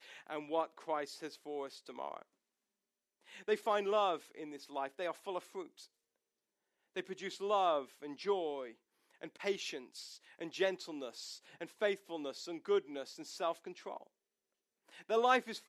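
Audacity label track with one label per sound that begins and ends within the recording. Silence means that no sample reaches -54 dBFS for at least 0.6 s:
3.280000	5.850000	sound
6.960000	14.070000	sound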